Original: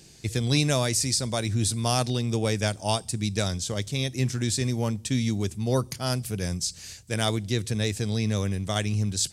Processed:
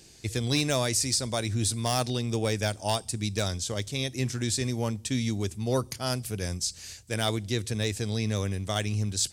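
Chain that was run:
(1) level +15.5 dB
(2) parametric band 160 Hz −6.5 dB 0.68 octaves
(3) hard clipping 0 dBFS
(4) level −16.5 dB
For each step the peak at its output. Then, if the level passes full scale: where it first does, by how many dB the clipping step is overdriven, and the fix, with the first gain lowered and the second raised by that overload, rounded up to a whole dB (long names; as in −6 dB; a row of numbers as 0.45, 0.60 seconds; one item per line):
+7.5, +7.0, 0.0, −16.5 dBFS
step 1, 7.0 dB
step 1 +8.5 dB, step 4 −9.5 dB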